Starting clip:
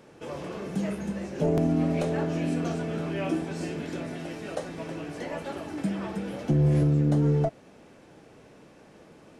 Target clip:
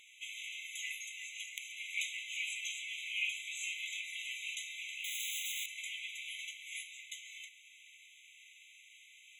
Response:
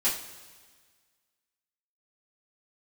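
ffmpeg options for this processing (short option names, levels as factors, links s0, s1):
-filter_complex "[0:a]acontrast=70,asettb=1/sr,asplit=3[s0][s1][s2];[s0]atrim=end=5.044[s3];[s1]atrim=start=5.04:end=5.66,asetpts=PTS-STARTPTS,afade=t=in:d=0.004:c=qsin,afade=t=out:st=0.616:d=0.004:c=qsin,aeval=exprs='(mod(37.6*val(0)+1,2)-1)/37.6':c=same[s4];[s2]atrim=start=5.656[s5];[s3][s4]acrossfade=d=0.004:c1=hsin:c2=qsin[s6];[s6][s5]acrossfade=d=0.004:c1=qsin:c2=hsin,afftfilt=real='re*eq(mod(floor(b*sr/1024/2000),2),1)':imag='im*eq(mod(floor(b*sr/1024/2000),2),1)':win_size=1024:overlap=0.75,volume=1.12"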